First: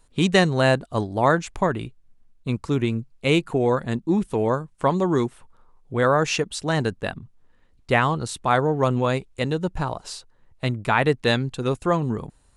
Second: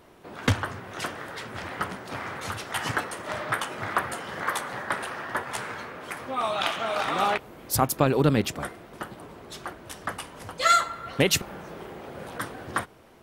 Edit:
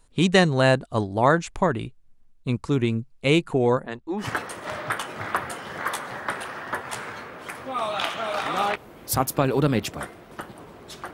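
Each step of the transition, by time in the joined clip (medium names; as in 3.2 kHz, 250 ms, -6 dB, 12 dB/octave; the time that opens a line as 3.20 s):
first
3.77–4.29 s: lamp-driven phase shifter 1.1 Hz
4.23 s: go over to second from 2.85 s, crossfade 0.12 s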